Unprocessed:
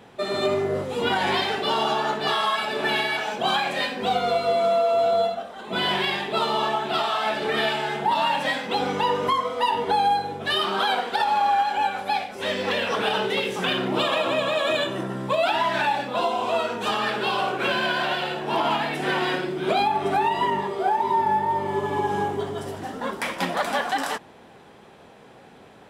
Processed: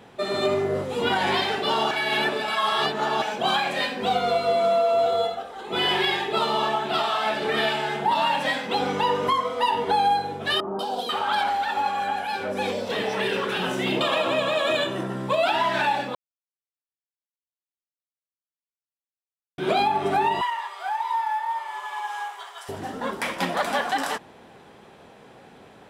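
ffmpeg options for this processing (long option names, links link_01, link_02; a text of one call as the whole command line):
ffmpeg -i in.wav -filter_complex "[0:a]asettb=1/sr,asplit=3[link_01][link_02][link_03];[link_01]atrim=end=5.064[link_04];[link_02]atrim=start=5.06:end=6.36,asetpts=PTS-STARTPTS,afade=type=in:duration=0.004:curve=qsin,afade=type=out:start_time=1.296:duration=0.004:curve=qsin,aecho=1:1:2.4:0.53,atrim=end_sample=57330[link_05];[link_03]atrim=start=6.356[link_06];[link_04][link_05]acrossfade=duration=0.004:curve1=hsin:curve2=qsin[link_07];[link_07][link_06]acrossfade=duration=0.004:curve1=qsin:curve2=hsin,asettb=1/sr,asplit=3[link_08][link_09][link_10];[link_08]atrim=end=10.604[link_11];[link_09]atrim=start=10.6:end=14.01,asetpts=PTS-STARTPTS,afade=type=in:duration=0.004:curve=qsin,afade=type=out:start_time=3.406:duration=0.004:curve=qsin,acrossover=split=870|3600[link_12][link_13][link_14];[link_14]adelay=190[link_15];[link_13]adelay=490[link_16];[link_12][link_16][link_15]amix=inputs=3:normalize=0,atrim=end_sample=150381[link_17];[link_10]atrim=start=14.006[link_18];[link_11][link_17]acrossfade=duration=0.004:curve1=hsin:curve2=qsin[link_19];[link_19][link_18]acrossfade=duration=0.004:curve1=qsin:curve2=hsin,asettb=1/sr,asplit=3[link_20][link_21][link_22];[link_20]atrim=end=20.414[link_23];[link_21]atrim=start=20.41:end=22.69,asetpts=PTS-STARTPTS,afade=type=in:duration=0.004:curve=qsin,afade=type=out:start_time=2.276:duration=0.004:curve=qsin,highpass=frequency=930:width=0.5412,highpass=frequency=930:width=1.3066[link_24];[link_22]atrim=start=22.686[link_25];[link_23][link_24]acrossfade=duration=0.004:curve1=hsin:curve2=qsin[link_26];[link_26][link_25]acrossfade=duration=0.004:curve1=qsin:curve2=hsin,asplit=5[link_27][link_28][link_29][link_30][link_31];[link_27]atrim=end=1.912[link_32];[link_28]atrim=start=1.908:end=3.222,asetpts=PTS-STARTPTS,areverse[link_33];[link_29]atrim=start=3.218:end=16.15,asetpts=PTS-STARTPTS,afade=type=out:start_time=12.928:duration=0.004:curve=hsin[link_34];[link_30]atrim=start=16.15:end=19.58,asetpts=PTS-STARTPTS,volume=0[link_35];[link_31]atrim=start=19.58,asetpts=PTS-STARTPTS,afade=type=in:duration=0.004:curve=hsin[link_36];[link_32][link_33]acrossfade=duration=0.004:curve1=hsin:curve2=hsin[link_37];[link_34][link_35][link_36]concat=n=3:v=0:a=1[link_38];[link_37][link_38]acrossfade=duration=0.004:curve1=hsin:curve2=hsin" out.wav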